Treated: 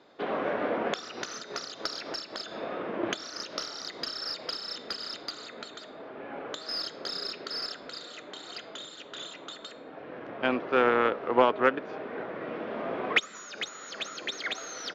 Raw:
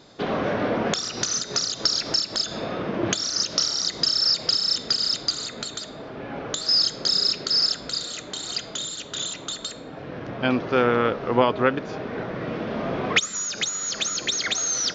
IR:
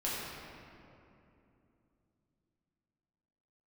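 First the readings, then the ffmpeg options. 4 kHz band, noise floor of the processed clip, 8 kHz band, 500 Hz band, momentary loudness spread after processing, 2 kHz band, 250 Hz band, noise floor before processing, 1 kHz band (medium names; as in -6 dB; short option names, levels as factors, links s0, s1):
-13.0 dB, -47 dBFS, -18.5 dB, -4.0 dB, 16 LU, -3.0 dB, -7.5 dB, -39 dBFS, -2.5 dB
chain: -filter_complex "[0:a]aeval=exprs='0.631*(cos(1*acos(clip(val(0)/0.631,-1,1)))-cos(1*PI/2))+0.02*(cos(4*acos(clip(val(0)/0.631,-1,1)))-cos(4*PI/2))+0.0282*(cos(7*acos(clip(val(0)/0.631,-1,1)))-cos(7*PI/2))':c=same,acrossover=split=250 3300:gain=0.141 1 0.141[s0][s1][s2];[s0][s1][s2]amix=inputs=3:normalize=0,aresample=32000,aresample=44100,volume=0.841"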